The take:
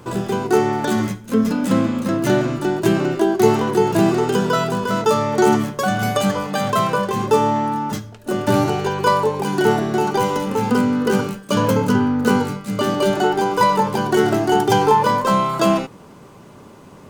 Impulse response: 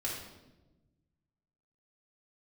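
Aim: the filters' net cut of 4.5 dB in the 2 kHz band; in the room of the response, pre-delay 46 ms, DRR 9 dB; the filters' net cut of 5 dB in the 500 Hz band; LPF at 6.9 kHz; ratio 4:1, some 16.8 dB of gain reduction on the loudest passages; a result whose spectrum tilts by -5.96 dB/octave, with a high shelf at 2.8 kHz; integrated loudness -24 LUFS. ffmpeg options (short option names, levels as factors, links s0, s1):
-filter_complex "[0:a]lowpass=6900,equalizer=f=500:t=o:g=-6.5,equalizer=f=2000:t=o:g=-3.5,highshelf=f=2800:g=-7,acompressor=threshold=0.0178:ratio=4,asplit=2[s0][s1];[1:a]atrim=start_sample=2205,adelay=46[s2];[s1][s2]afir=irnorm=-1:irlink=0,volume=0.251[s3];[s0][s3]amix=inputs=2:normalize=0,volume=3.55"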